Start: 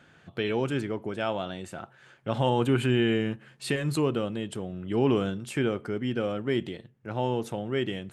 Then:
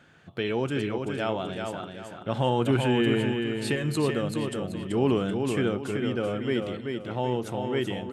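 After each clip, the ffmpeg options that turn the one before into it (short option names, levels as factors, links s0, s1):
-af "aecho=1:1:383|766|1149|1532:0.562|0.197|0.0689|0.0241"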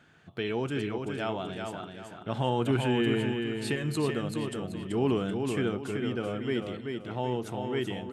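-af "bandreject=f=540:w=12,volume=0.708"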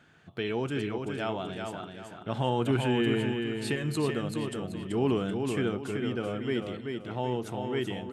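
-af anull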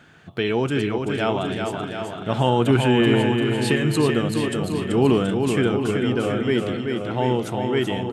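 -af "aecho=1:1:727:0.376,volume=2.82"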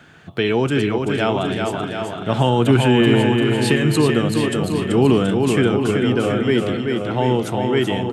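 -filter_complex "[0:a]acrossover=split=300|3000[s0][s1][s2];[s1]acompressor=threshold=0.112:ratio=6[s3];[s0][s3][s2]amix=inputs=3:normalize=0,volume=1.58"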